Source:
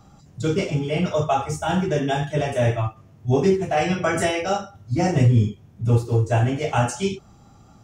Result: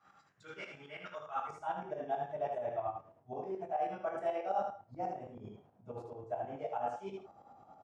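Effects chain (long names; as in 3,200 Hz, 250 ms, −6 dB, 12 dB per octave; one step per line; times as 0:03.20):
reversed playback
downward compressor 6 to 1, threshold −31 dBFS, peak gain reduction 17.5 dB
reversed playback
shaped tremolo saw up 9.3 Hz, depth 85%
speech leveller within 4 dB 0.5 s
band-pass filter sweep 1,600 Hz → 720 Hz, 0:01.13–0:01.96
ambience of single reflections 21 ms −9.5 dB, 77 ms −6 dB
level +5 dB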